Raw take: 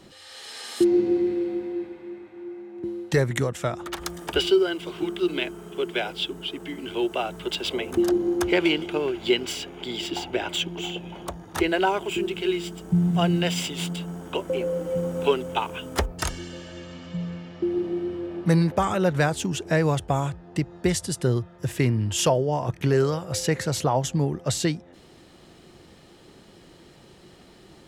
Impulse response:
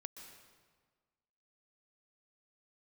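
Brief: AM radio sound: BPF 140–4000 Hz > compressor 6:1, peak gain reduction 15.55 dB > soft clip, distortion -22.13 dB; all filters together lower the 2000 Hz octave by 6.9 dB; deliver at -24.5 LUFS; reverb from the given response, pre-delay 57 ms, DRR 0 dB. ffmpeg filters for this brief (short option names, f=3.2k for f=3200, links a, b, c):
-filter_complex "[0:a]equalizer=f=2k:t=o:g=-9,asplit=2[a][b];[1:a]atrim=start_sample=2205,adelay=57[c];[b][c]afir=irnorm=-1:irlink=0,volume=4.5dB[d];[a][d]amix=inputs=2:normalize=0,highpass=140,lowpass=4k,acompressor=threshold=-29dB:ratio=6,asoftclip=threshold=-23dB,volume=9dB"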